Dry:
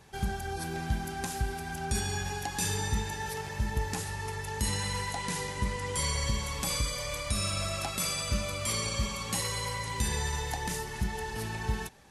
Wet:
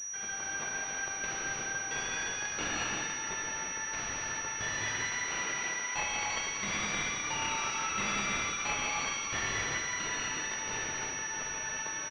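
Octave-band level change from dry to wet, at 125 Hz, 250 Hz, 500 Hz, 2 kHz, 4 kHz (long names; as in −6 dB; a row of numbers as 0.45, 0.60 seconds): −15.0, −6.5, −6.0, +4.5, −2.0 decibels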